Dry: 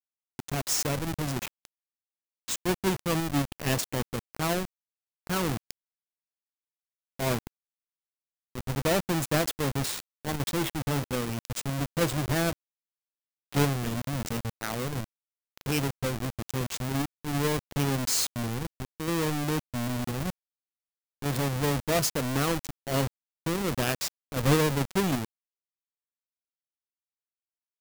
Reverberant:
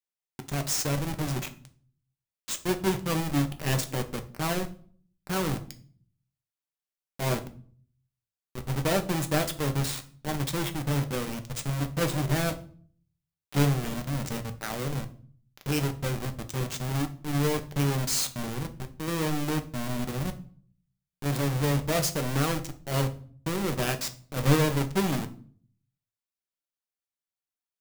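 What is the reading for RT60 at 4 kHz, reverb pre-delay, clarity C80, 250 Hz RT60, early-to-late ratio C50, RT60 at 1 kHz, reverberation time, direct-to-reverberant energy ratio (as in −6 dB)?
0.40 s, 5 ms, 19.5 dB, 0.70 s, 15.0 dB, 0.45 s, 0.45 s, 6.5 dB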